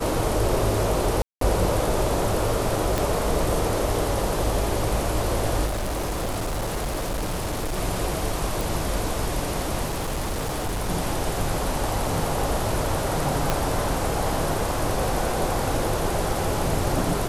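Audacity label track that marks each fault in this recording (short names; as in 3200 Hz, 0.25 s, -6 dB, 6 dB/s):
1.220000	1.410000	gap 0.193 s
2.980000	2.980000	pop
5.660000	7.780000	clipped -23.5 dBFS
8.610000	8.610000	pop
9.860000	10.900000	clipped -23 dBFS
13.500000	13.500000	pop -6 dBFS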